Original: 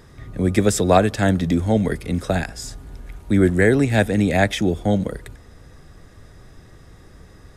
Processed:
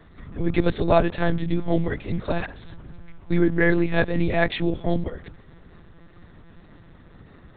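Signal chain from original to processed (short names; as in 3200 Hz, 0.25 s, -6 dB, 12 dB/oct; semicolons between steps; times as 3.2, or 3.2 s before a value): monotone LPC vocoder at 8 kHz 170 Hz; wow and flutter 26 cents; gain -3 dB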